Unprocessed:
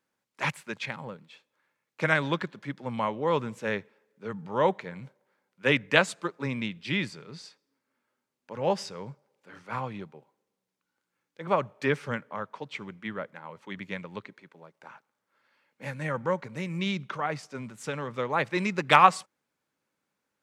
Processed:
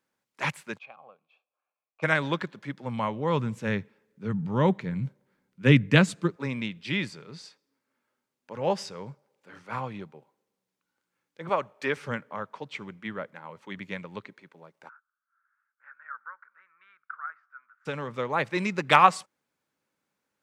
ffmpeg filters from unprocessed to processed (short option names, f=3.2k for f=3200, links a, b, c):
-filter_complex "[0:a]asplit=3[a][b][c];[a]afade=t=out:st=0.77:d=0.02[d];[b]asplit=3[e][f][g];[e]bandpass=f=730:t=q:w=8,volume=0dB[h];[f]bandpass=f=1.09k:t=q:w=8,volume=-6dB[i];[g]bandpass=f=2.44k:t=q:w=8,volume=-9dB[j];[h][i][j]amix=inputs=3:normalize=0,afade=t=in:st=0.77:d=0.02,afade=t=out:st=2.02:d=0.02[k];[c]afade=t=in:st=2.02:d=0.02[l];[d][k][l]amix=inputs=3:normalize=0,asettb=1/sr,asplit=3[m][n][o];[m]atrim=end=2.704[p];[n]atrim=start=2.7:end=6.36,asetpts=PTS-STARTPTS,afade=t=in:d=0.004:c=qsin,afade=t=out:st=3.656:d=0.004:c=qsin,asubboost=boost=9.5:cutoff=240[q];[o]atrim=start=6.356[r];[p][q]acrossfade=d=0.004:c1=hsin:c2=qsin[s];[s][r]acrossfade=d=0.004:c1=qsin:c2=hsin,asettb=1/sr,asplit=3[t][u][v];[t]atrim=end=11.494[w];[u]atrim=start=11.49:end=11.97,asetpts=PTS-STARTPTS,afade=t=in:d=0.004:c=qsin,afade=t=out:st=0.476:d=0.004:c=qsin,highpass=f=380:p=1[x];[v]atrim=start=11.966[y];[w][x]acrossfade=d=0.004:c1=hsin:c2=qsin[z];[z][y]acrossfade=d=0.004:c1=qsin:c2=hsin,asplit=3[aa][ab][ac];[aa]afade=t=out:st=14.88:d=0.02[ad];[ab]asuperpass=centerf=1400:order=4:qfactor=4,afade=t=in:st=14.88:d=0.02,afade=t=out:st=17.85:d=0.02[ae];[ac]afade=t=in:st=17.85:d=0.02[af];[ad][ae][af]amix=inputs=3:normalize=0"